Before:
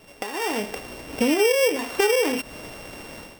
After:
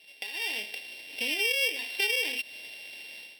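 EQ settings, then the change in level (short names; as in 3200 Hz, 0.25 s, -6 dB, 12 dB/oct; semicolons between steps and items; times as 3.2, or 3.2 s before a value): band-pass 3700 Hz, Q 0.87; high shelf 4500 Hz +9.5 dB; fixed phaser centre 3000 Hz, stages 4; 0.0 dB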